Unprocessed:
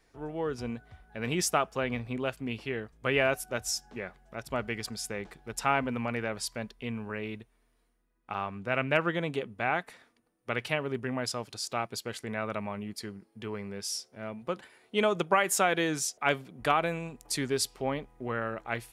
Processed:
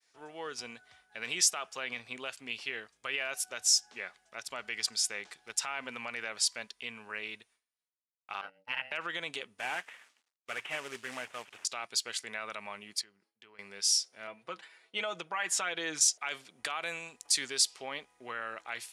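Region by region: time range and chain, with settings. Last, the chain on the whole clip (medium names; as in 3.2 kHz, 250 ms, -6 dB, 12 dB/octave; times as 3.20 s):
8.41–8.92 s: expander -29 dBFS + rippled EQ curve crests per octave 0.88, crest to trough 14 dB + ring modulator 380 Hz
9.59–11.65 s: CVSD coder 16 kbps + companded quantiser 6-bit
13.01–13.59 s: treble shelf 5.4 kHz -10.5 dB + compression 2:1, threshold -59 dBFS
14.27–16.01 s: low-pass 2.2 kHz 6 dB/octave + comb 6.2 ms, depth 60%
whole clip: peak limiter -22 dBFS; frequency weighting ITU-R 468; expander -58 dBFS; trim -3.5 dB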